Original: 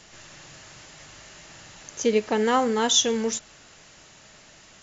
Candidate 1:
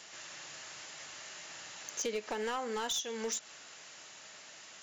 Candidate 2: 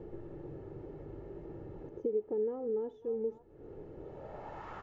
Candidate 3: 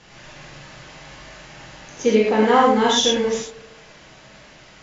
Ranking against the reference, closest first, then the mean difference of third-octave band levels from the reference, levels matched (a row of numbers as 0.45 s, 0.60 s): 3, 1, 2; 3.5 dB, 7.5 dB, 14.0 dB